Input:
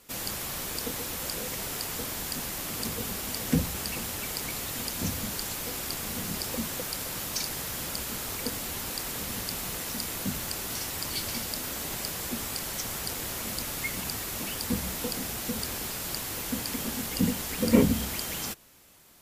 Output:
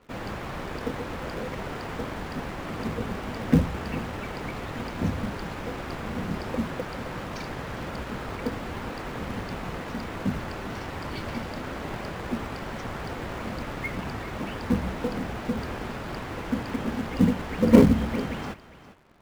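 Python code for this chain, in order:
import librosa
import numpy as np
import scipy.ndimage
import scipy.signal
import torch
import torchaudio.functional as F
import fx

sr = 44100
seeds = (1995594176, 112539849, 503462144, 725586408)

p1 = scipy.signal.sosfilt(scipy.signal.butter(2, 1700.0, 'lowpass', fs=sr, output='sos'), x)
p2 = fx.quant_companded(p1, sr, bits=4)
p3 = p1 + F.gain(torch.from_numpy(p2), -8.5).numpy()
p4 = p3 + 10.0 ** (-15.5 / 20.0) * np.pad(p3, (int(404 * sr / 1000.0), 0))[:len(p3)]
y = F.gain(torch.from_numpy(p4), 3.0).numpy()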